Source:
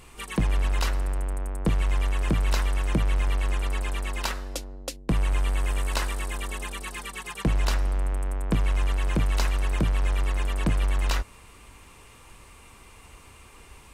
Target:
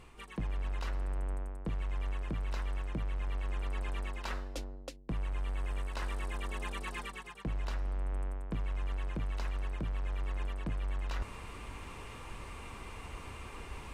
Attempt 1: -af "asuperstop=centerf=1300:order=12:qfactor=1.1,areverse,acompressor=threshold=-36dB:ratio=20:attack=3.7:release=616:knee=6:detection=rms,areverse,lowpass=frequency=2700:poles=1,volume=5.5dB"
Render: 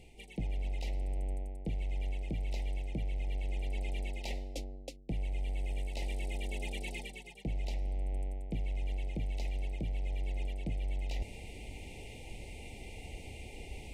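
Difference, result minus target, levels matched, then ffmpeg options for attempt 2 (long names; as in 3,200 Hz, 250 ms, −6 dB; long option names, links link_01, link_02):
1,000 Hz band −7.0 dB
-af "areverse,acompressor=threshold=-36dB:ratio=20:attack=3.7:release=616:knee=6:detection=rms,areverse,lowpass=frequency=2700:poles=1,volume=5.5dB"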